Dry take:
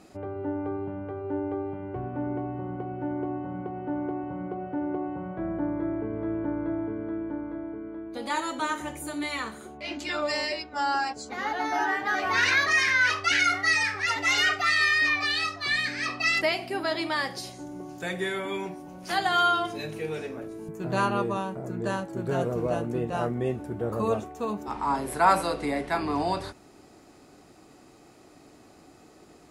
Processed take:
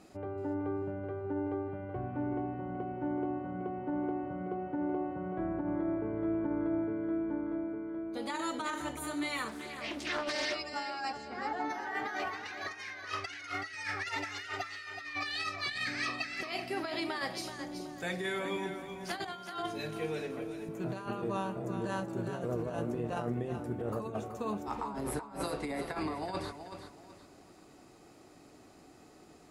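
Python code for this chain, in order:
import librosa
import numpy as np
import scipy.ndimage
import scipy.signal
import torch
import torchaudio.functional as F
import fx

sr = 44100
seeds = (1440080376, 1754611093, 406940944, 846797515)

y = fx.lowpass(x, sr, hz=1100.0, slope=6, at=(11.16, 11.69), fade=0.02)
y = fx.low_shelf(y, sr, hz=470.0, db=6.5, at=(24.94, 25.44))
y = fx.over_compress(y, sr, threshold_db=-29.0, ratio=-0.5)
y = fx.echo_feedback(y, sr, ms=377, feedback_pct=31, wet_db=-9)
y = fx.doppler_dist(y, sr, depth_ms=0.37, at=(9.48, 10.55))
y = y * 10.0 ** (-6.5 / 20.0)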